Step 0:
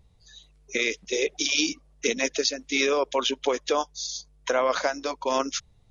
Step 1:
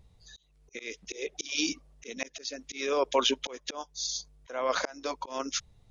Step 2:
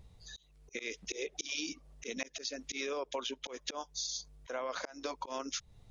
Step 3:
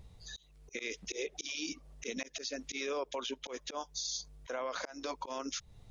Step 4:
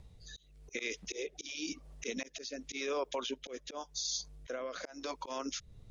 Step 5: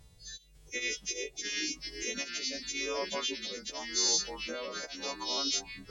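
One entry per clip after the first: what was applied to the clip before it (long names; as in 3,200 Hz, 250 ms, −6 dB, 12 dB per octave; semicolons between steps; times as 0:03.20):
volume swells 358 ms
downward compressor 8 to 1, threshold −37 dBFS, peak gain reduction 17 dB; level +2 dB
brickwall limiter −30 dBFS, peak gain reduction 8.5 dB; level +2.5 dB
rotating-speaker cabinet horn 0.9 Hz; level +2 dB
every partial snapped to a pitch grid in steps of 2 semitones; delay with pitch and tempo change per echo 553 ms, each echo −3 semitones, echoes 2, each echo −6 dB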